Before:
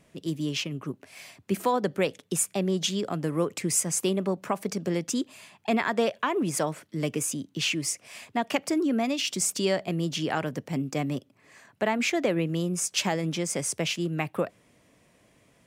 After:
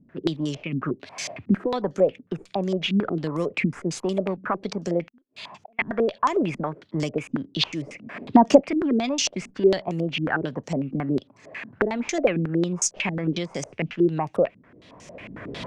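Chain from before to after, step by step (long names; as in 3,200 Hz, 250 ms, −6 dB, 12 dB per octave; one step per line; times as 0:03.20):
one-sided soft clipper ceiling −15 dBFS
camcorder AGC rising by 22 dB per second
0:05.07–0:05.79: gate with flip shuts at −31 dBFS, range −40 dB
0:07.87–0:08.61: parametric band 240 Hz +14.5 dB 2.5 octaves
low-pass on a step sequencer 11 Hz 240–6,300 Hz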